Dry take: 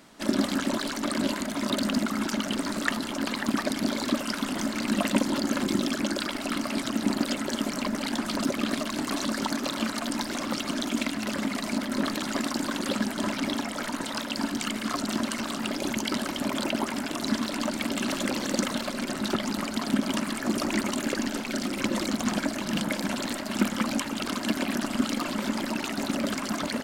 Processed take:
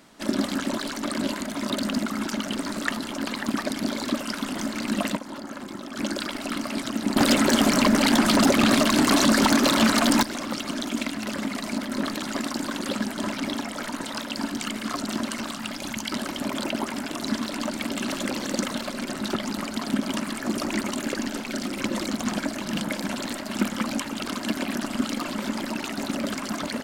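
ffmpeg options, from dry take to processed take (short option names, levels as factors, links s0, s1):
-filter_complex "[0:a]asettb=1/sr,asplit=3[s0][s1][s2];[s0]atrim=end=5.154[s3];[s1]atrim=start=5.15:end=5.96,asetpts=PTS-STARTPTS,afade=t=in:d=0.004:c=qsin,afade=t=out:st=0.806:d=0.004:c=qsin,acrossover=split=670|1500[s4][s5][s6];[s4]acompressor=threshold=0.0141:ratio=4[s7];[s5]acompressor=threshold=0.01:ratio=4[s8];[s6]acompressor=threshold=0.00447:ratio=4[s9];[s7][s8][s9]amix=inputs=3:normalize=0[s10];[s2]atrim=start=5.956[s11];[s3][s10]acrossfade=d=0.004:c1=hsin:c2=qsin[s12];[s12][s11]acrossfade=d=0.004:c1=qsin:c2=hsin,asettb=1/sr,asplit=3[s13][s14][s15];[s13]atrim=end=7.164[s16];[s14]atrim=start=7.16:end=10.23,asetpts=PTS-STARTPTS,afade=t=in:d=0.004:c=qsin,afade=t=out:st=3.066:d=0.004:c=qsin,aeval=exprs='0.237*sin(PI/2*2.51*val(0)/0.237)':c=same[s17];[s15]atrim=start=10.226[s18];[s16][s17]acrossfade=d=0.004:c1=hsin:c2=qsin[s19];[s19][s18]acrossfade=d=0.004:c1=qsin:c2=hsin,asettb=1/sr,asplit=3[s20][s21][s22];[s20]atrim=end=15.514[s23];[s21]atrim=start=15.51:end=16.13,asetpts=PTS-STARTPTS,afade=t=in:d=0.004:c=qsin,afade=t=out:st=0.616:d=0.004:c=qsin,equalizer=f=410:w=1.3:g=-10.5[s24];[s22]atrim=start=16.126[s25];[s23][s24]acrossfade=d=0.004:c1=hsin:c2=qsin[s26];[s26][s25]acrossfade=d=0.004:c1=qsin:c2=hsin"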